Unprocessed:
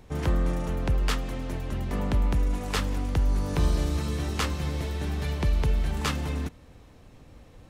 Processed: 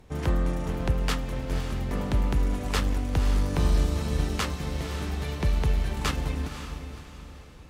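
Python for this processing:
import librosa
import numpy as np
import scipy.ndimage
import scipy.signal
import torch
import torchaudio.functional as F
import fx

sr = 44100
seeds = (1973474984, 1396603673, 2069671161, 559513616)

y = fx.echo_diffused(x, sr, ms=529, feedback_pct=41, wet_db=-8)
y = fx.cheby_harmonics(y, sr, harmonics=(7,), levels_db=(-31,), full_scale_db=-12.0)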